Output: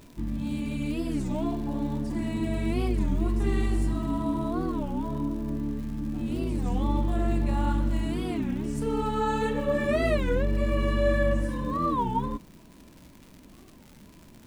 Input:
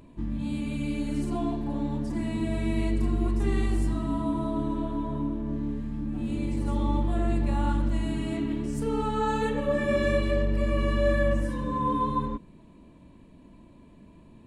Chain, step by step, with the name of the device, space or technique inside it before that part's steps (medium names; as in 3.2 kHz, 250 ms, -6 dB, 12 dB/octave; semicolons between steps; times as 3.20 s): warped LP (warped record 33 1/3 rpm, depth 250 cents; crackle 140 per s -40 dBFS; pink noise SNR 35 dB)